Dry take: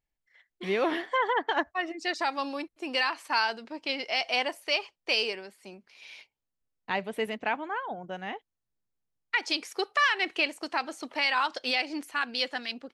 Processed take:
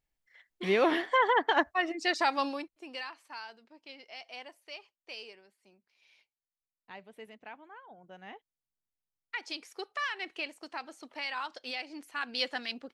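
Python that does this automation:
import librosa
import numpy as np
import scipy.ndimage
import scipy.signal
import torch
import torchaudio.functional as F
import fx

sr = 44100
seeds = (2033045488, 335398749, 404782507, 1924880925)

y = fx.gain(x, sr, db=fx.line((2.45, 1.5), (2.79, -10.0), (3.38, -17.5), (7.83, -17.5), (8.34, -10.0), (11.96, -10.0), (12.42, -2.0)))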